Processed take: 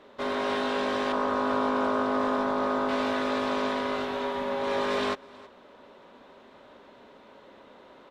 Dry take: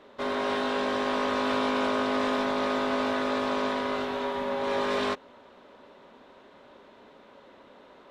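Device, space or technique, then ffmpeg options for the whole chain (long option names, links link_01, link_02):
ducked delay: -filter_complex "[0:a]asplit=3[link_01][link_02][link_03];[link_02]adelay=319,volume=-5dB[link_04];[link_03]apad=whole_len=371631[link_05];[link_04][link_05]sidechaincompress=threshold=-49dB:ratio=8:attack=38:release=661[link_06];[link_01][link_06]amix=inputs=2:normalize=0,asettb=1/sr,asplit=3[link_07][link_08][link_09];[link_07]atrim=end=1.124[link_10];[link_08]atrim=start=1.12:end=2.89,asetpts=PTS-STARTPTS,afade=type=in:duration=0.004:curve=qsin,afade=type=out:start_time=1.766:duration=0.004:curve=qsin,highshelf=frequency=1700:width_type=q:width=1.5:gain=-6.5[link_11];[link_09]atrim=start=2.886[link_12];[link_10][link_11]acrossfade=duration=0.004:curve1=hsin:curve2=qsin[link_13];[link_13][link_12]acrossfade=duration=0.004:curve1=qsin:curve2=hsin"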